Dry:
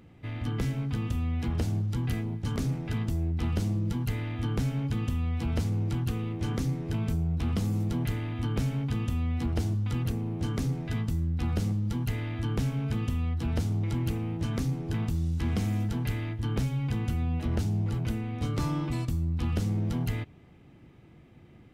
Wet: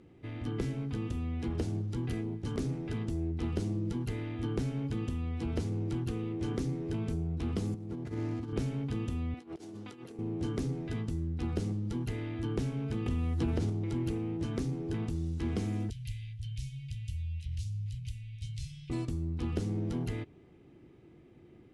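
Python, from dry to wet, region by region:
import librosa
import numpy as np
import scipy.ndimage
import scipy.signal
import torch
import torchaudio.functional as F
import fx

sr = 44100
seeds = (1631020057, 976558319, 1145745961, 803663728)

y = fx.chain(x, sr, fx.median_filter(points=15),
    fx.highpass(hz=65.0, slope=24),
    fx.over_compress(threshold_db=-32.0, ratio=-0.5), at=(7.74, 8.53))
y = fx.chain(y, sr, fx.highpass(hz=310.0, slope=12),
    fx.over_compress(threshold_db=-43.0, ratio=-0.5), at=(9.34, 10.19))
y = fx.chain(y, sr, fx.high_shelf(hz=6600.0, db=-8.5),
    fx.quant_dither(seeds[0], bits=10, dither='none'),
    fx.env_flatten(amount_pct=100), at=(13.06, 13.7))
y = fx.chain(y, sr, fx.cheby2_bandstop(low_hz=300.0, high_hz=1000.0, order=4, stop_db=60),
    fx.peak_eq(hz=840.0, db=-13.0, octaves=0.8), at=(15.9, 18.9))
y = scipy.signal.sosfilt(scipy.signal.ellip(4, 1.0, 40, 11000.0, 'lowpass', fs=sr, output='sos'), y)
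y = fx.peak_eq(y, sr, hz=370.0, db=10.5, octaves=0.81)
y = y * 10.0 ** (-5.5 / 20.0)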